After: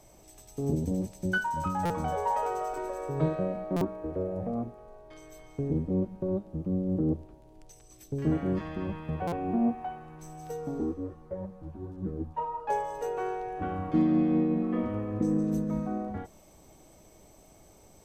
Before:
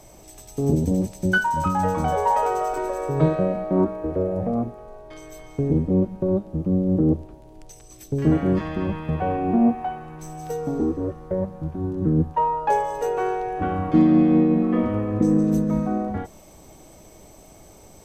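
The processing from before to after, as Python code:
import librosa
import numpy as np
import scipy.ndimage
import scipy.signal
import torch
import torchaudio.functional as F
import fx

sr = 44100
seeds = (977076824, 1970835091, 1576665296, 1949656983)

y = fx.buffer_glitch(x, sr, at_s=(1.85, 3.76, 9.27), block=256, repeats=8)
y = fx.ensemble(y, sr, at=(10.93, 12.68), fade=0.02)
y = F.gain(torch.from_numpy(y), -8.5).numpy()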